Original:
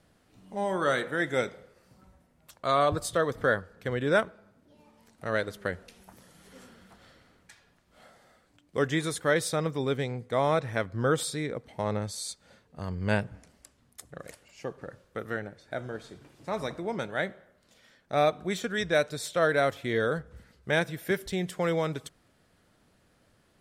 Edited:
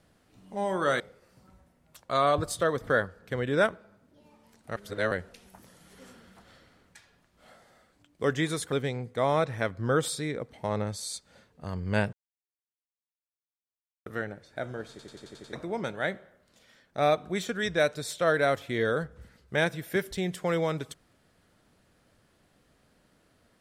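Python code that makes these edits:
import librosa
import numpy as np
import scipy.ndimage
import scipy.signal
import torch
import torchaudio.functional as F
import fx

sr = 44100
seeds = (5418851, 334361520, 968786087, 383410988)

y = fx.edit(x, sr, fx.cut(start_s=1.0, length_s=0.54),
    fx.reverse_span(start_s=5.3, length_s=0.35),
    fx.cut(start_s=9.26, length_s=0.61),
    fx.silence(start_s=13.28, length_s=1.93),
    fx.stutter_over(start_s=16.05, slice_s=0.09, count=7), tone=tone)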